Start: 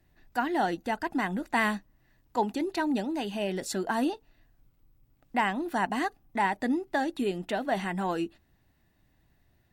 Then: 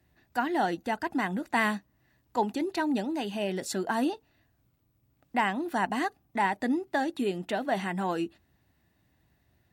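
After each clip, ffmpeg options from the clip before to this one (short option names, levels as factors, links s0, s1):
-af "highpass=f=53:w=0.5412,highpass=f=53:w=1.3066"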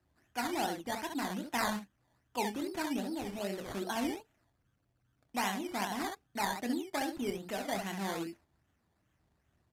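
-af "aecho=1:1:25|67:0.398|0.531,acrusher=samples=13:mix=1:aa=0.000001:lfo=1:lforange=7.8:lforate=2.5,aresample=32000,aresample=44100,volume=0.398"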